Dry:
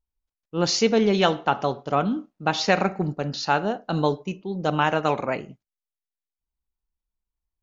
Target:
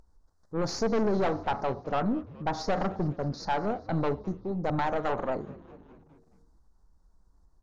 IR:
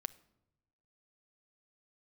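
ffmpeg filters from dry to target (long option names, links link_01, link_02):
-filter_complex "[0:a]asuperstop=centerf=2700:order=4:qfactor=0.65,aeval=exprs='(tanh(14.1*val(0)+0.45)-tanh(0.45))/14.1':channel_layout=same,lowpass=4100,acompressor=mode=upward:threshold=-48dB:ratio=2.5,asplit=6[link_01][link_02][link_03][link_04][link_05][link_06];[link_02]adelay=208,afreqshift=-93,volume=-21dB[link_07];[link_03]adelay=416,afreqshift=-186,volume=-25.2dB[link_08];[link_04]adelay=624,afreqshift=-279,volume=-29.3dB[link_09];[link_05]adelay=832,afreqshift=-372,volume=-33.5dB[link_10];[link_06]adelay=1040,afreqshift=-465,volume=-37.6dB[link_11];[link_01][link_07][link_08][link_09][link_10][link_11]amix=inputs=6:normalize=0,asplit=2[link_12][link_13];[link_13]acompressor=threshold=-52dB:ratio=6,volume=-2dB[link_14];[link_12][link_14]amix=inputs=2:normalize=0"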